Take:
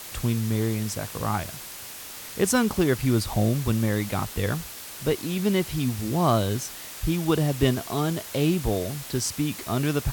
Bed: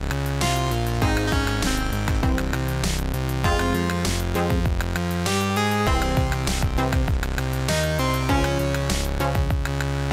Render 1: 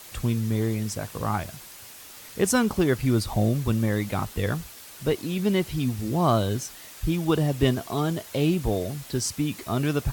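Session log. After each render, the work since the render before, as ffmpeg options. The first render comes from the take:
-af "afftdn=nr=6:nf=-40"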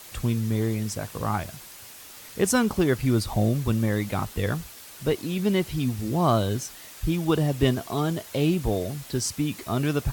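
-af anull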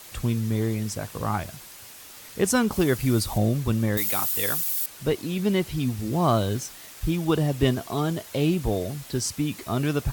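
-filter_complex "[0:a]asettb=1/sr,asplit=3[s0][s1][s2];[s0]atrim=end=2.724[s3];[s1]atrim=start=2.72:end=3.38,asetpts=PTS-STARTPTS,afade=t=in:d=0.004:c=qsin,afade=t=out:st=0.656:d=0.004:c=qsin,highshelf=f=6300:g=8[s4];[s2]atrim=start=3.376[s5];[s3][s4]acrossfade=d=0.004:c1=hsin:c2=qsin[s6];[s6][s5]acrossfade=d=0.004:c1=qsin:c2=hsin,asettb=1/sr,asplit=3[s7][s8][s9];[s7]atrim=end=3.974[s10];[s8]atrim=start=3.97:end=4.86,asetpts=PTS-STARTPTS,afade=t=in:d=0.004:c=qsin,afade=t=out:st=0.886:d=0.004:c=qsin,aemphasis=mode=production:type=riaa[s11];[s9]atrim=start=4.856[s12];[s10][s11]acrossfade=d=0.004:c1=hsin:c2=qsin[s13];[s13][s12]acrossfade=d=0.004:c1=qsin:c2=hsin,asettb=1/sr,asplit=3[s14][s15][s16];[s14]atrim=end=6.134[s17];[s15]atrim=start=6.13:end=7.11,asetpts=PTS-STARTPTS,afade=t=in:d=0.004:c=qsin,afade=t=out:st=0.976:d=0.004:c=qsin,acrusher=bits=6:mix=0:aa=0.5[s18];[s16]atrim=start=7.106[s19];[s17][s18]acrossfade=d=0.004:c1=hsin:c2=qsin[s20];[s20][s19]acrossfade=d=0.004:c1=qsin:c2=hsin"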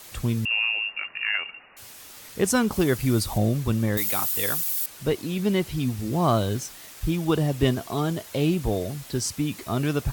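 -filter_complex "[0:a]asettb=1/sr,asplit=3[s0][s1][s2];[s0]atrim=end=0.454[s3];[s1]atrim=start=0.45:end=1.77,asetpts=PTS-STARTPTS,afade=t=in:d=0.004:c=qsin,afade=t=out:st=1.316:d=0.004:c=qsin,lowpass=f=2500:t=q:w=0.5098,lowpass=f=2500:t=q:w=0.6013,lowpass=f=2500:t=q:w=0.9,lowpass=f=2500:t=q:w=2.563,afreqshift=-2900[s4];[s2]atrim=start=1.766[s5];[s3][s4]acrossfade=d=0.004:c1=hsin:c2=qsin[s6];[s6][s5]acrossfade=d=0.004:c1=qsin:c2=hsin"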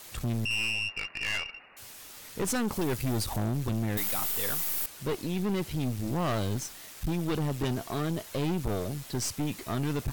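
-af "aeval=exprs='(tanh(20*val(0)+0.55)-tanh(0.55))/20':c=same"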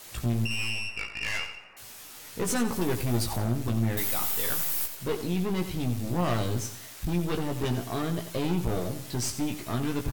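-filter_complex "[0:a]asplit=2[s0][s1];[s1]adelay=17,volume=0.562[s2];[s0][s2]amix=inputs=2:normalize=0,aecho=1:1:89|178|267|356:0.282|0.107|0.0407|0.0155"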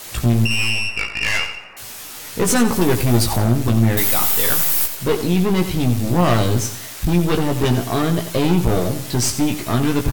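-af "volume=3.76"

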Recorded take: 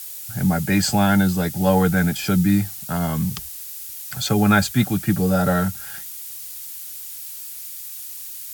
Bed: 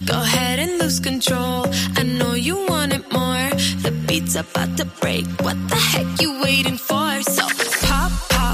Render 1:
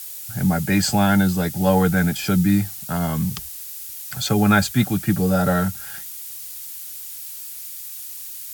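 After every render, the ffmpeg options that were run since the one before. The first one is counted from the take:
-af anull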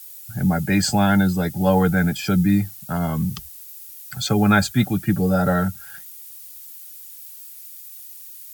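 -af "afftdn=nr=9:nf=-35"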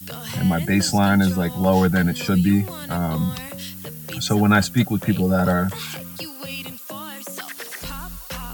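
-filter_complex "[1:a]volume=0.168[s0];[0:a][s0]amix=inputs=2:normalize=0"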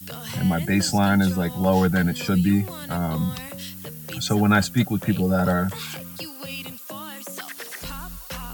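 -af "volume=0.794"

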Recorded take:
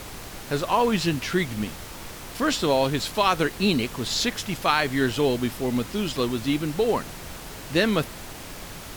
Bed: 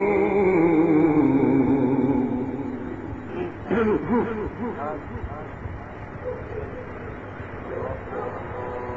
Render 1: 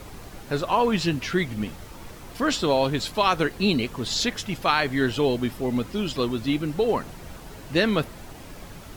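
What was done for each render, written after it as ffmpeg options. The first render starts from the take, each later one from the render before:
-af "afftdn=nr=8:nf=-39"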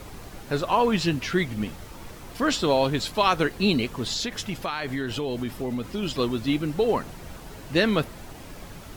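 -filter_complex "[0:a]asettb=1/sr,asplit=3[s0][s1][s2];[s0]atrim=end=4.024[s3];[s1]atrim=start=4.02:end=6.03,asetpts=PTS-STARTPTS,afade=t=in:d=0.004:c=qsin,afade=t=out:st=2.006:d=0.004:c=qsin,acompressor=threshold=0.0631:ratio=10:attack=3.2:release=140:knee=1:detection=peak[s4];[s2]atrim=start=6.026[s5];[s3][s4]acrossfade=d=0.004:c1=hsin:c2=qsin[s6];[s6][s5]acrossfade=d=0.004:c1=qsin:c2=hsin"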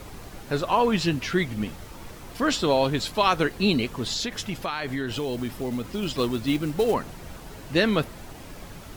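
-filter_complex "[0:a]asettb=1/sr,asplit=3[s0][s1][s2];[s0]atrim=end=5.124[s3];[s1]atrim=start=5.12:end=6.94,asetpts=PTS-STARTPTS,afade=t=in:d=0.004:c=qsin,afade=t=out:st=1.816:d=0.004:c=qsin,acrusher=bits=5:mode=log:mix=0:aa=0.000001[s4];[s2]atrim=start=6.936[s5];[s3][s4]acrossfade=d=0.004:c1=hsin:c2=qsin[s6];[s6][s5]acrossfade=d=0.004:c1=qsin:c2=hsin"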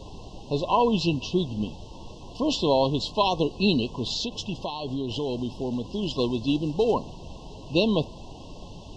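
-af "afftfilt=real='re*(1-between(b*sr/4096,1100,2600))':imag='im*(1-between(b*sr/4096,1100,2600))':win_size=4096:overlap=0.75,lowpass=f=5900:w=0.5412,lowpass=f=5900:w=1.3066"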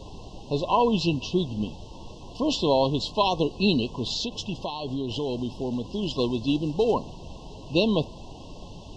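-af anull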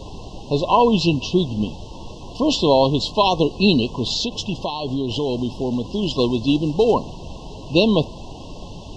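-af "volume=2.11,alimiter=limit=0.708:level=0:latency=1"

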